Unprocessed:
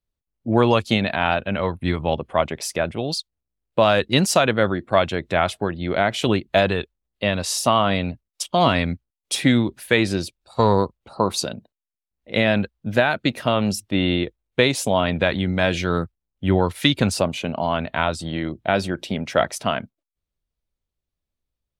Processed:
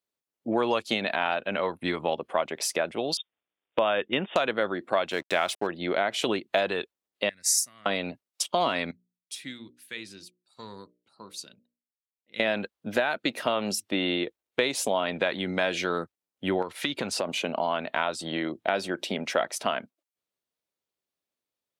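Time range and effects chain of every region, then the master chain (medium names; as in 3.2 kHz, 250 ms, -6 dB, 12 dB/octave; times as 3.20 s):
3.17–4.36 s: brick-wall FIR low-pass 3.7 kHz + tape noise reduction on one side only encoder only
5.11–5.67 s: treble shelf 2.5 kHz +8.5 dB + hysteresis with a dead band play -32.5 dBFS
7.29–7.86 s: FFT filter 120 Hz 0 dB, 900 Hz -26 dB, 2 kHz +6 dB, 3 kHz -17 dB, 6 kHz +11 dB + upward expansion 2.5:1, over -27 dBFS
8.91–12.40 s: amplifier tone stack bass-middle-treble 6-0-2 + hum notches 60/120/180/240/300/360/420/480/540/600 Hz
16.62–17.29 s: treble shelf 6.5 kHz -9 dB + compression 3:1, threshold -22 dBFS + tape noise reduction on one side only encoder only
whole clip: high-pass 310 Hz 12 dB/octave; compression 2.5:1, threshold -26 dBFS; trim +1 dB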